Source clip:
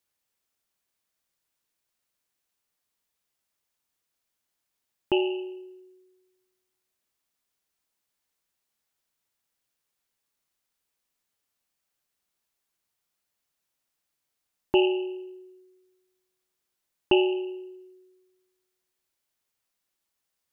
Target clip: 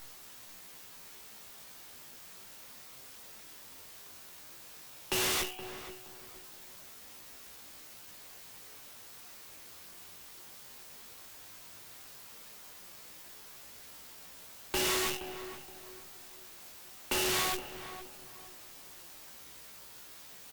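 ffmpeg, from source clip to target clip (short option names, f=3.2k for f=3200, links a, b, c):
-filter_complex "[0:a]aemphasis=mode=production:type=riaa,acrossover=split=2700[a][b];[b]acompressor=threshold=-57dB:ratio=4:attack=1:release=60[c];[a][c]amix=inputs=2:normalize=0,highshelf=f=2.6k:g=6.5,acrossover=split=340|1600[d][e][f];[f]acontrast=71[g];[d][e][g]amix=inputs=3:normalize=0,apsyclip=16.5dB,acrusher=bits=4:dc=4:mix=0:aa=0.000001,flanger=delay=16:depth=6.7:speed=0.15,volume=18dB,asoftclip=hard,volume=-18dB,flanger=delay=7.4:depth=7.4:regen=55:speed=0.33:shape=triangular,aeval=exprs='(mod(12.6*val(0)+1,2)-1)/12.6':c=same,asplit=2[h][i];[i]adelay=471,lowpass=f=1.7k:p=1,volume=-10.5dB,asplit=2[j][k];[k]adelay=471,lowpass=f=1.7k:p=1,volume=0.34,asplit=2[l][m];[m]adelay=471,lowpass=f=1.7k:p=1,volume=0.34,asplit=2[n][o];[o]adelay=471,lowpass=f=1.7k:p=1,volume=0.34[p];[j][l][n][p]amix=inputs=4:normalize=0[q];[h][q]amix=inputs=2:normalize=0,volume=-5dB" -ar 48000 -c:a libopus -b:a 256k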